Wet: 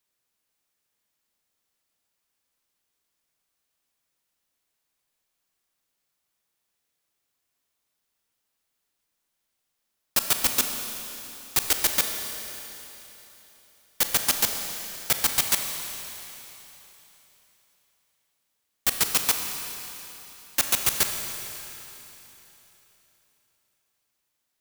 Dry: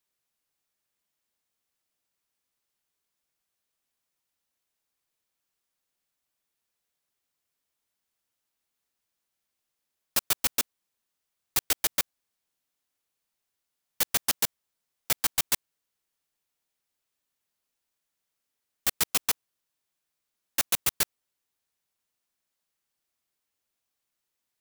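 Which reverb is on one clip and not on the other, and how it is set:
four-comb reverb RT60 3.5 s, combs from 28 ms, DRR 4.5 dB
level +3 dB

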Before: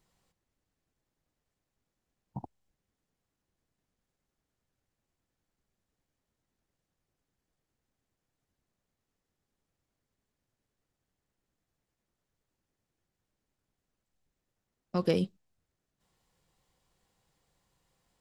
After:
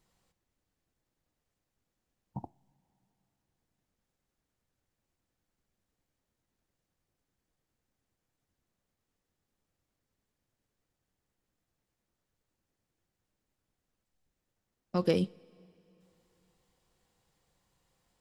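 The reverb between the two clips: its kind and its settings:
coupled-rooms reverb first 0.25 s, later 3.4 s, from −20 dB, DRR 16.5 dB

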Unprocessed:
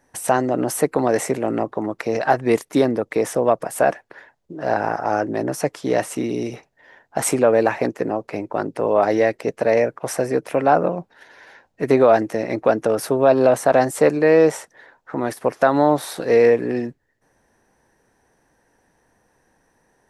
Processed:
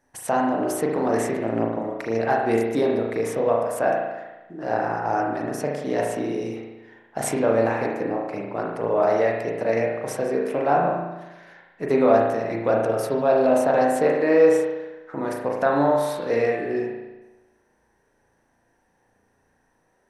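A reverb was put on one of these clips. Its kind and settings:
spring reverb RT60 1.1 s, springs 35 ms, chirp 40 ms, DRR −1.5 dB
level −7 dB

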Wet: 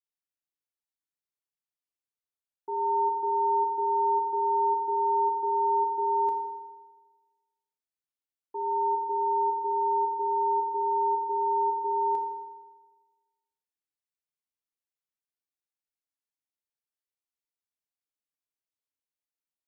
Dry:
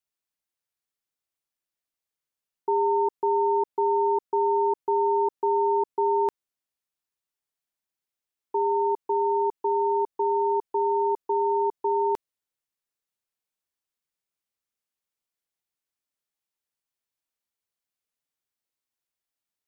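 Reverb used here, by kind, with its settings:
feedback delay network reverb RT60 1.3 s, low-frequency decay 0.95×, high-frequency decay 0.8×, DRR 2 dB
level −12 dB

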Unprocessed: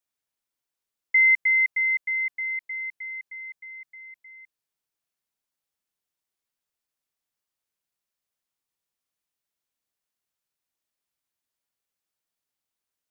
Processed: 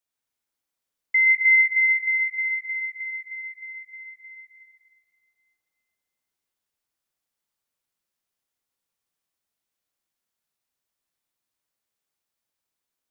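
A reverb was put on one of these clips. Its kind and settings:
dense smooth reverb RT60 2.5 s, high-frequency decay 0.65×, pre-delay 85 ms, DRR −1 dB
level −1 dB

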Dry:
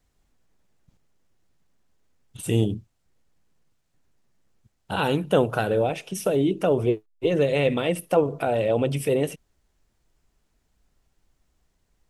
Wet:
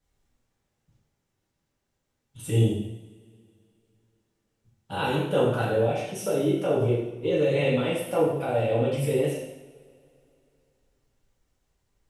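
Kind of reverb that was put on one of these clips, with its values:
coupled-rooms reverb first 0.84 s, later 2.9 s, from −22 dB, DRR −7 dB
level −10 dB

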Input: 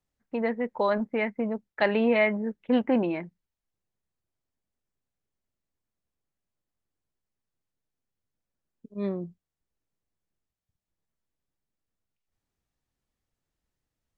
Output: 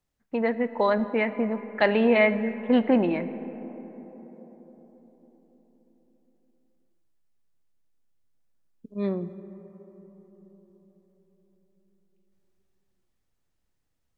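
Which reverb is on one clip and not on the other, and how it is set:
comb and all-pass reverb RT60 4.8 s, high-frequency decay 0.3×, pre-delay 0 ms, DRR 12 dB
level +2.5 dB

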